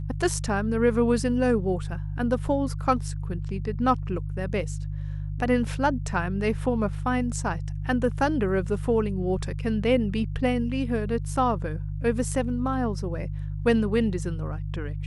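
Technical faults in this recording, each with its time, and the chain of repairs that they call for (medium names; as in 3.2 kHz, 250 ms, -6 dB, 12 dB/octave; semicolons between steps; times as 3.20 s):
hum 50 Hz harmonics 3 -31 dBFS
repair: de-hum 50 Hz, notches 3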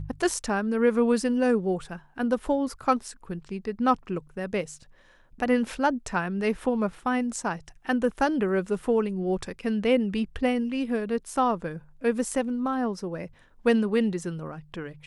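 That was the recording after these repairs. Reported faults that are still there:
nothing left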